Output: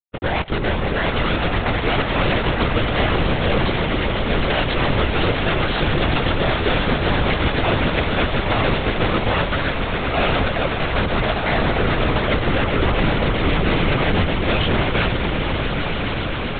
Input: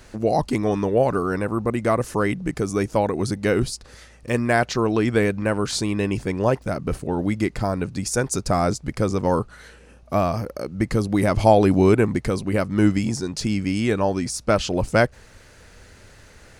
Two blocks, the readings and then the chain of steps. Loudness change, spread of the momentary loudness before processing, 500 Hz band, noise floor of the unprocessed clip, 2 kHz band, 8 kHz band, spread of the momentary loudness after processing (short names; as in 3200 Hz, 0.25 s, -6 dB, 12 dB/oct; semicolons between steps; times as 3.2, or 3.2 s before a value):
+2.5 dB, 7 LU, 0.0 dB, -49 dBFS, +8.5 dB, under -40 dB, 3 LU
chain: low shelf 320 Hz -9 dB; reverse; compressor 16:1, threshold -35 dBFS, peak gain reduction 25 dB; reverse; bit-crush 7-bit; wavefolder -38 dBFS; swelling echo 0.132 s, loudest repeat 8, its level -10.5 dB; LPC vocoder at 8 kHz whisper; maximiser +30.5 dB; gain -6 dB